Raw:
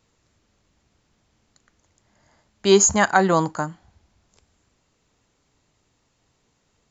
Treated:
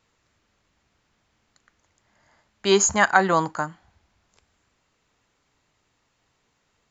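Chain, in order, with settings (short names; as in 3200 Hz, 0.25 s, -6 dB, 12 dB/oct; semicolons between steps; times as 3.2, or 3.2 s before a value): bell 1700 Hz +7.5 dB 2.7 oct; gain -5.5 dB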